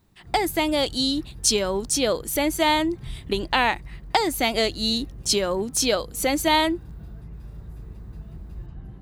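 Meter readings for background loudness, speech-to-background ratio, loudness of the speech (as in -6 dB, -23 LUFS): -42.0 LUFS, 19.0 dB, -23.0 LUFS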